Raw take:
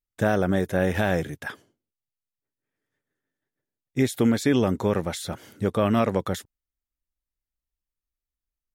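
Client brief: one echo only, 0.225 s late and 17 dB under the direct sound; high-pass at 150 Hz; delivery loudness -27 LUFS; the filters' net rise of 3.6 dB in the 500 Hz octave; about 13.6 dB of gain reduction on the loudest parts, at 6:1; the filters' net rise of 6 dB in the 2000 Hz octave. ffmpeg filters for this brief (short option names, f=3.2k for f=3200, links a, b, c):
-af "highpass=150,equalizer=f=500:t=o:g=4,equalizer=f=2k:t=o:g=7.5,acompressor=threshold=-30dB:ratio=6,aecho=1:1:225:0.141,volume=8dB"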